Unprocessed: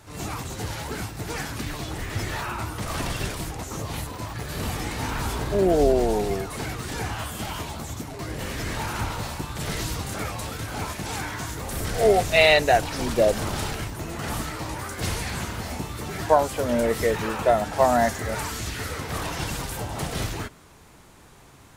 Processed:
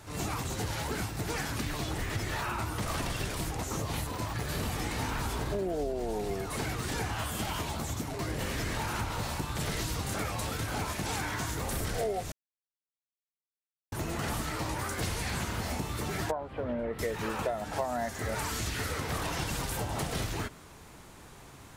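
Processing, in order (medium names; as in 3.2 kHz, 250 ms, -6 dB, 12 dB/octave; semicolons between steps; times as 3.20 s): compression 10:1, threshold -29 dBFS, peak gain reduction 17 dB; 12.32–13.92 s: mute; 16.31–16.99 s: distance through air 480 m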